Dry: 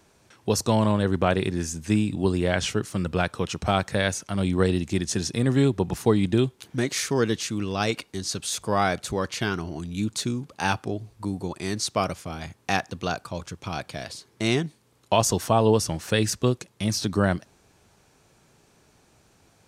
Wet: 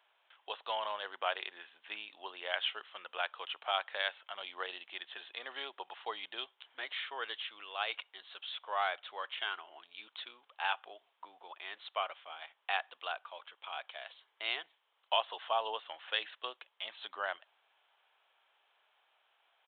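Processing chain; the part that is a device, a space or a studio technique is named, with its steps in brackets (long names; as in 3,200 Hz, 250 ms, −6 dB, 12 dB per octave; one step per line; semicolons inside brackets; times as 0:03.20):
musical greeting card (downsampling to 8,000 Hz; high-pass filter 710 Hz 24 dB per octave; parametric band 3,100 Hz +8 dB 0.24 octaves)
level −8 dB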